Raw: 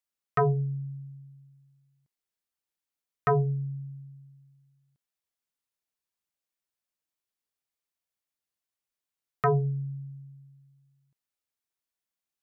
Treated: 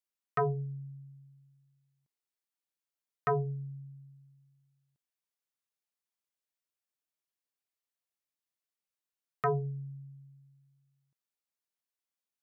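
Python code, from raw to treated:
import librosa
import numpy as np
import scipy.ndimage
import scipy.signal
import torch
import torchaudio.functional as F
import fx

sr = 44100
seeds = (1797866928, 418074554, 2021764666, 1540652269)

y = fx.low_shelf(x, sr, hz=87.0, db=-11.5)
y = y * 10.0 ** (-4.5 / 20.0)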